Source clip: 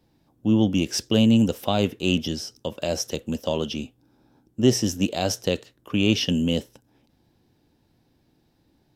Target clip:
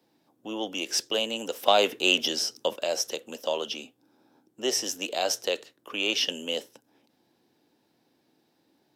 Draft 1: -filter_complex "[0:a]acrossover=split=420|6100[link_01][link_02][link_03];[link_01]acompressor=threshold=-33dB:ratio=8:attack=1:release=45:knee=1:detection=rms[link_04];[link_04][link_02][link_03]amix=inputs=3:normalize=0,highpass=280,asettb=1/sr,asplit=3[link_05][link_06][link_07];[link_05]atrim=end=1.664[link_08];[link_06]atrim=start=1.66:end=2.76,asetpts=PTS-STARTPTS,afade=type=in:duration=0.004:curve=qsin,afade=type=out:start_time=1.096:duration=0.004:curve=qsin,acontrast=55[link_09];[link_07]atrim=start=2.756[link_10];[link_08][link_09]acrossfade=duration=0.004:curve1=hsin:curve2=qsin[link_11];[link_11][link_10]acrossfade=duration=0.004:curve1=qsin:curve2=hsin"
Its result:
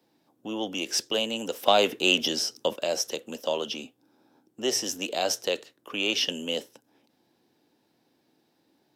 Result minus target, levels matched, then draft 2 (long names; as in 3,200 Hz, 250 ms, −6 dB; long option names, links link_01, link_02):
downward compressor: peak gain reduction −7 dB
-filter_complex "[0:a]acrossover=split=420|6100[link_01][link_02][link_03];[link_01]acompressor=threshold=-41dB:ratio=8:attack=1:release=45:knee=1:detection=rms[link_04];[link_04][link_02][link_03]amix=inputs=3:normalize=0,highpass=280,asettb=1/sr,asplit=3[link_05][link_06][link_07];[link_05]atrim=end=1.664[link_08];[link_06]atrim=start=1.66:end=2.76,asetpts=PTS-STARTPTS,afade=type=in:duration=0.004:curve=qsin,afade=type=out:start_time=1.096:duration=0.004:curve=qsin,acontrast=55[link_09];[link_07]atrim=start=2.756[link_10];[link_08][link_09]acrossfade=duration=0.004:curve1=hsin:curve2=qsin[link_11];[link_11][link_10]acrossfade=duration=0.004:curve1=qsin:curve2=hsin"